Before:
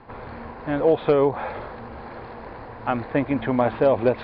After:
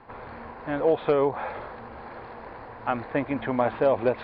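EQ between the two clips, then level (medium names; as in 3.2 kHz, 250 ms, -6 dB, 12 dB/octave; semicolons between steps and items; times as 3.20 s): bass shelf 490 Hz -7 dB; treble shelf 3.8 kHz -8 dB; 0.0 dB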